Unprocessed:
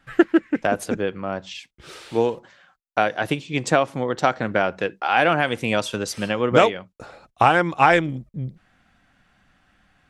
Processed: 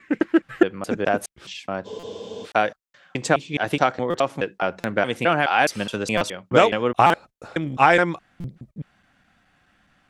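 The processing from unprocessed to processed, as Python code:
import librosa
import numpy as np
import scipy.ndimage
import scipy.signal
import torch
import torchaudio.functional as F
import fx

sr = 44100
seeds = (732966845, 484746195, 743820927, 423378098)

y = fx.block_reorder(x, sr, ms=210.0, group=3)
y = fx.low_shelf(y, sr, hz=66.0, db=-8.0)
y = fx.spec_freeze(y, sr, seeds[0], at_s=1.87, hold_s=0.58)
y = fx.buffer_glitch(y, sr, at_s=(1.99, 4.1, 4.8, 6.17, 7.06, 8.4), block=256, repeats=6)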